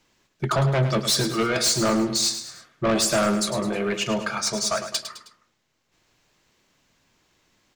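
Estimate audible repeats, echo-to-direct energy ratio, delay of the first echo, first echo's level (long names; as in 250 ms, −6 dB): 3, −9.0 dB, 105 ms, −10.0 dB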